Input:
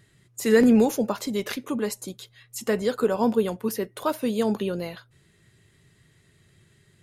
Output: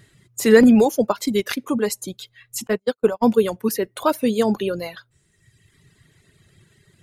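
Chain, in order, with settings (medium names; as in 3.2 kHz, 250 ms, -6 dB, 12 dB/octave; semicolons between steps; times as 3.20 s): 0.85–1.58 s: transient shaper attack +3 dB, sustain -5 dB; 2.67–3.25 s: gate -21 dBFS, range -42 dB; reverb removal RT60 1.3 s; trim +6.5 dB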